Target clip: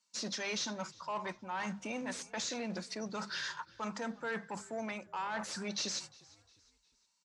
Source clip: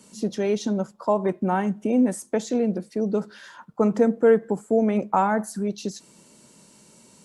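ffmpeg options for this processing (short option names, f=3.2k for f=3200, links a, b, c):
-filter_complex "[0:a]agate=range=-32dB:threshold=-44dB:ratio=16:detection=peak,lowshelf=f=640:t=q:w=3:g=-9,bandreject=f=50:t=h:w=6,bandreject=f=100:t=h:w=6,bandreject=f=150:t=h:w=6,bandreject=f=200:t=h:w=6,bandreject=f=250:t=h:w=6,areverse,acompressor=threshold=-35dB:ratio=6,areverse,crystalizer=i=8:c=0,asoftclip=type=tanh:threshold=-29.5dB,highpass=120,equalizer=f=530:t=q:w=4:g=7,equalizer=f=780:t=q:w=4:g=-9,equalizer=f=3.1k:t=q:w=4:g=-4,lowpass=f=5.5k:w=0.5412,lowpass=f=5.5k:w=1.3066,asplit=4[a][b][c][d];[b]adelay=355,afreqshift=-52,volume=-23dB[e];[c]adelay=710,afreqshift=-104,volume=-30.3dB[f];[d]adelay=1065,afreqshift=-156,volume=-37.7dB[g];[a][e][f][g]amix=inputs=4:normalize=0"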